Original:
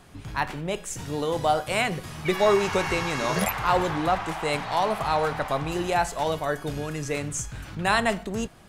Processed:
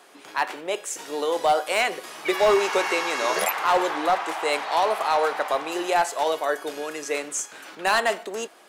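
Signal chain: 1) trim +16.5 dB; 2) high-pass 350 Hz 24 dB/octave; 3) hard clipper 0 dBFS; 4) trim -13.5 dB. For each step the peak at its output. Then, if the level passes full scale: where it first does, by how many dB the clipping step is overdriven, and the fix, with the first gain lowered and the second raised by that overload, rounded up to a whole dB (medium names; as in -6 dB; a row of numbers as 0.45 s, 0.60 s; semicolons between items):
+8.5 dBFS, +7.5 dBFS, 0.0 dBFS, -13.5 dBFS; step 1, 7.5 dB; step 1 +8.5 dB, step 4 -5.5 dB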